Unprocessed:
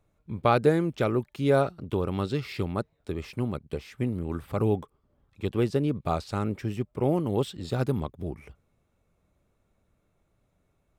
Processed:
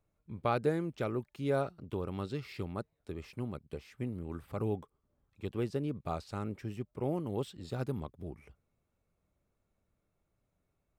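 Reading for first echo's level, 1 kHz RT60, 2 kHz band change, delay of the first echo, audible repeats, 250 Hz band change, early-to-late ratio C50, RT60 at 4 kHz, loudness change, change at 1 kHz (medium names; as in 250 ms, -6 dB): no echo, no reverb, -9.0 dB, no echo, no echo, -9.0 dB, no reverb, no reverb, -9.0 dB, -9.0 dB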